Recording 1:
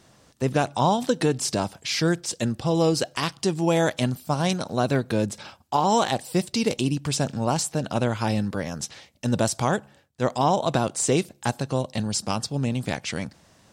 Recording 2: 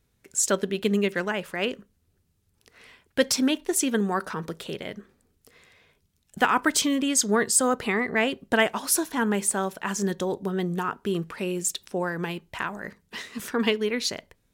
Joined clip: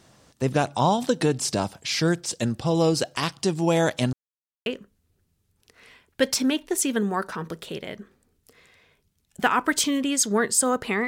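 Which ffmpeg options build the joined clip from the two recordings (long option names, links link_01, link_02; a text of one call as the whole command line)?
ffmpeg -i cue0.wav -i cue1.wav -filter_complex "[0:a]apad=whole_dur=11.07,atrim=end=11.07,asplit=2[link_01][link_02];[link_01]atrim=end=4.13,asetpts=PTS-STARTPTS,afade=type=out:start_time=4.126:duration=0.004:curve=hsin[link_03];[link_02]atrim=start=4.13:end=4.66,asetpts=PTS-STARTPTS,volume=0[link_04];[1:a]atrim=start=1.64:end=8.05,asetpts=PTS-STARTPTS,afade=type=in:duration=0.004:curve=hsin[link_05];[link_03][link_04][link_05]concat=n=3:v=0:a=1" out.wav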